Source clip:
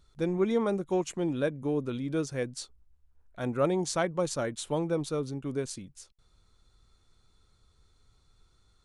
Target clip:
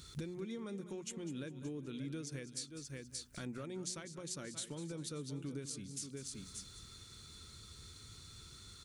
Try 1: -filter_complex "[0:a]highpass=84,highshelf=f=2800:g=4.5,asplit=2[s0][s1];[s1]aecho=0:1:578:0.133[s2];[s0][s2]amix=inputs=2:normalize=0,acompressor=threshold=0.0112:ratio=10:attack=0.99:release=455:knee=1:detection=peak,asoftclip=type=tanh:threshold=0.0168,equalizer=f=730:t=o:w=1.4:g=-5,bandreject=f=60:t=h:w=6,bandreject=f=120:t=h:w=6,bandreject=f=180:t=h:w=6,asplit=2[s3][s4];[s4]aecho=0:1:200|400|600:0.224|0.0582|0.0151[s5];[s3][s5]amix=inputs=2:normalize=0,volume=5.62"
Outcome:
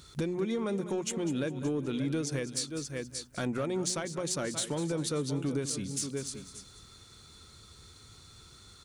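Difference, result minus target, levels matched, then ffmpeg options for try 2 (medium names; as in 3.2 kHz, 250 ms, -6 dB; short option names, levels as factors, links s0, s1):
compression: peak gain reduction -10.5 dB; 1 kHz band +2.0 dB
-filter_complex "[0:a]highpass=84,highshelf=f=2800:g=4.5,asplit=2[s0][s1];[s1]aecho=0:1:578:0.133[s2];[s0][s2]amix=inputs=2:normalize=0,acompressor=threshold=0.00299:ratio=10:attack=0.99:release=455:knee=1:detection=peak,asoftclip=type=tanh:threshold=0.0168,equalizer=f=730:t=o:w=1.4:g=-13.5,bandreject=f=60:t=h:w=6,bandreject=f=120:t=h:w=6,bandreject=f=180:t=h:w=6,asplit=2[s3][s4];[s4]aecho=0:1:200|400|600:0.224|0.0582|0.0151[s5];[s3][s5]amix=inputs=2:normalize=0,volume=5.62"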